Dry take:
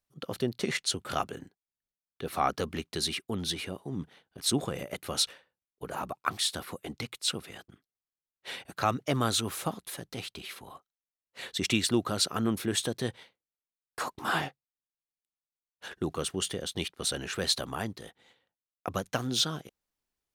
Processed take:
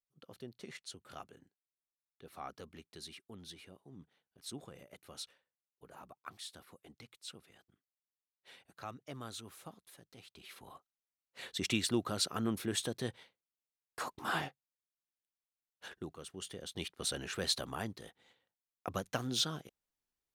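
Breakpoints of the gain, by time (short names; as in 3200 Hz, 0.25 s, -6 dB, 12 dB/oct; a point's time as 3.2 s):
10.23 s -18 dB
10.66 s -6 dB
15.87 s -6 dB
16.18 s -17 dB
16.96 s -5.5 dB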